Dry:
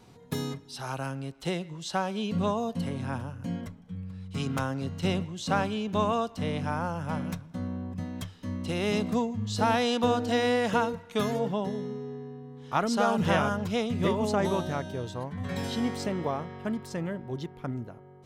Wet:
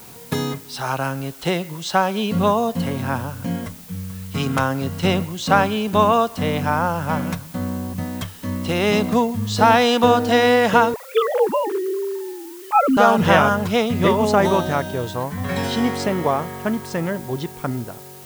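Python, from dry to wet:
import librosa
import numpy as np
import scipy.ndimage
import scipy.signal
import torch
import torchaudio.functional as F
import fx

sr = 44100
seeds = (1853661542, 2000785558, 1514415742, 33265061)

y = fx.sine_speech(x, sr, at=(10.94, 12.97))
y = fx.dmg_noise_colour(y, sr, seeds[0], colour='blue', level_db=-51.0)
y = fx.peak_eq(y, sr, hz=1200.0, db=5.0, octaves=2.9)
y = y * librosa.db_to_amplitude(7.5)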